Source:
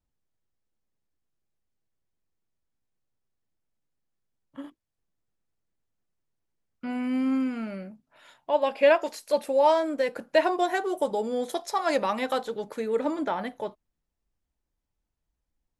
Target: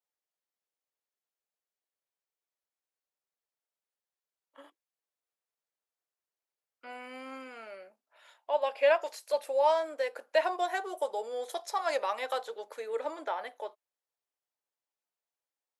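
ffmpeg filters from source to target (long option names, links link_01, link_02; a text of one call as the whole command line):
ffmpeg -i in.wav -af "highpass=frequency=460:width=0.5412,highpass=frequency=460:width=1.3066,volume=-4.5dB" out.wav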